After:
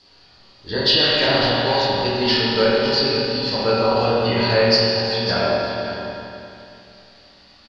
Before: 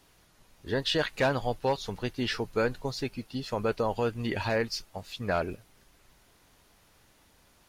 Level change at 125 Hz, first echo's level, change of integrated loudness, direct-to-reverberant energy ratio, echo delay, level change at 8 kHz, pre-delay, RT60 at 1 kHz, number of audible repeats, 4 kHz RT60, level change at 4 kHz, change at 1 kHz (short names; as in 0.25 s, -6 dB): +9.5 dB, -9.5 dB, +13.0 dB, -10.0 dB, 0.551 s, n/a, 5 ms, 2.7 s, 1, 2.6 s, +18.0 dB, +11.5 dB